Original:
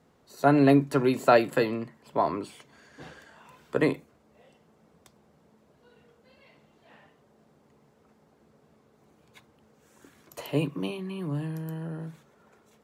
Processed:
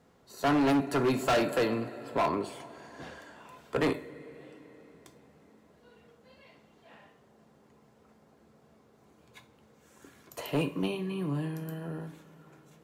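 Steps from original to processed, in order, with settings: two-slope reverb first 0.31 s, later 4.4 s, from -21 dB, DRR 7 dB; hard clip -22.5 dBFS, distortion -6 dB

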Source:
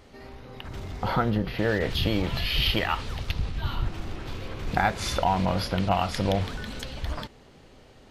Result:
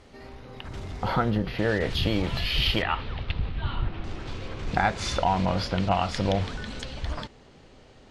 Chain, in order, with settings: LPF 11000 Hz 24 dB/oct, from 2.82 s 3700 Hz, from 4.04 s 8600 Hz

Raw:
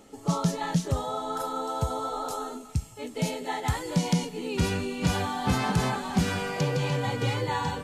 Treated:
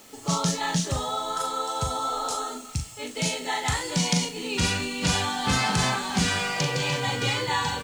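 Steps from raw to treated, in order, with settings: LPF 9400 Hz 24 dB/oct; tilt shelf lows -6 dB, about 1300 Hz; bit-crush 9-bit; doubler 40 ms -6.5 dB; gain +3.5 dB

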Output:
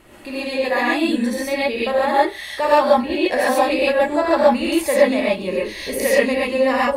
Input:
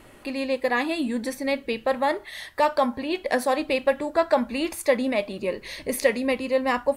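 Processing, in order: non-linear reverb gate 0.16 s rising, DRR -7 dB; gain -1 dB

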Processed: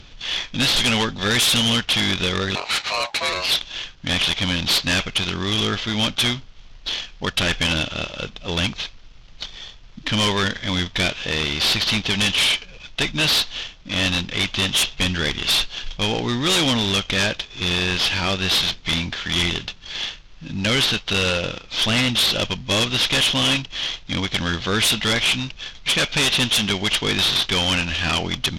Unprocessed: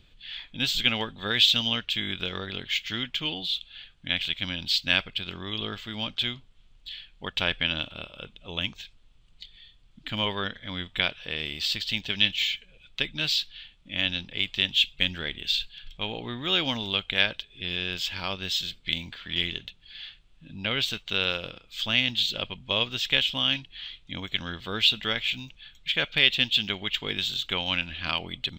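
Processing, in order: CVSD 32 kbps; sine folder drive 10 dB, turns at -14.5 dBFS; 2.55–3.51 ring modulator 830 Hz

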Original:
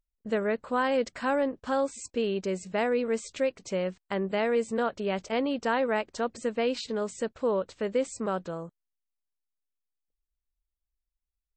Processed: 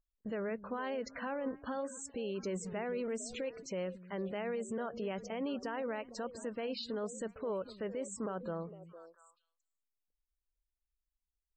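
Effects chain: 2.43–3.47 zero-crossing step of -42 dBFS; limiter -27.5 dBFS, peak gain reduction 11.5 dB; on a send: delay with a stepping band-pass 0.228 s, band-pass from 190 Hz, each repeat 1.4 oct, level -9 dB; on the sum: loudest bins only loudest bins 64; gain -3 dB

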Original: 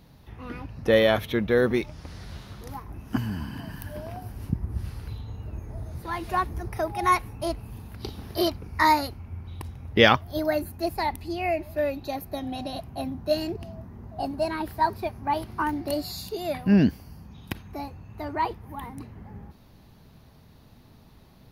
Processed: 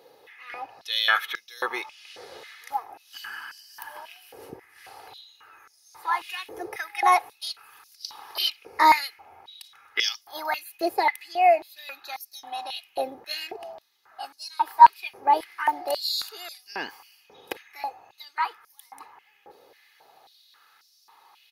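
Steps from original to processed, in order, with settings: comb 2.4 ms, depth 55%; stepped high-pass 3.7 Hz 500–5400 Hz

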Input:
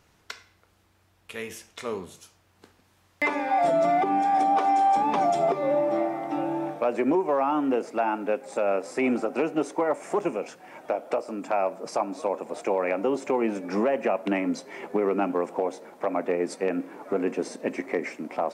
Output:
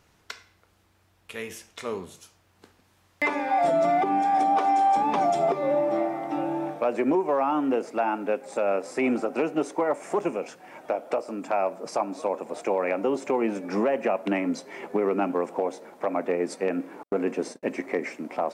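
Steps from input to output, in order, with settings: 17.03–17.63 gate -35 dBFS, range -56 dB

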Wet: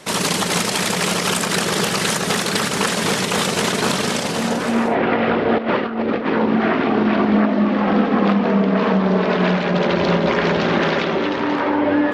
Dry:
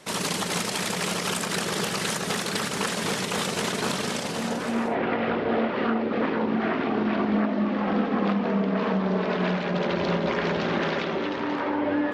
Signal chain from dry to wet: 5.58–6.26 negative-ratio compressor -28 dBFS, ratio -0.5; gain +8 dB

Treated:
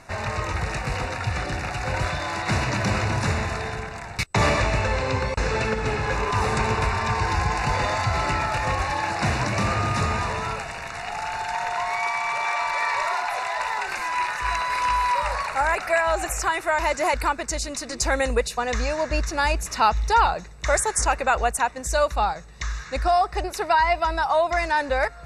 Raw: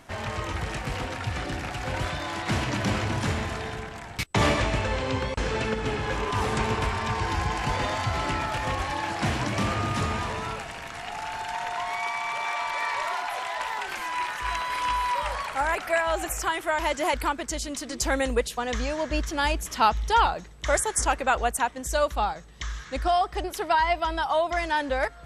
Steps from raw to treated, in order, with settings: LPF 10000 Hz 12 dB/oct; bell 280 Hz -6.5 dB 0.77 oct; in parallel at -3 dB: limiter -18 dBFS, peak gain reduction 10.5 dB; on the sum: Butterworth band-stop 3200 Hz, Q 4.8

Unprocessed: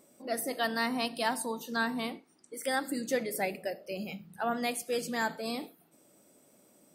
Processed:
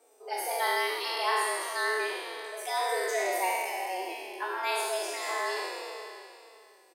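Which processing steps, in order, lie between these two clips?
spectral trails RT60 2.70 s; high shelf 11000 Hz -6.5 dB; frequency shift +180 Hz; endless flanger 3.9 ms -1.7 Hz

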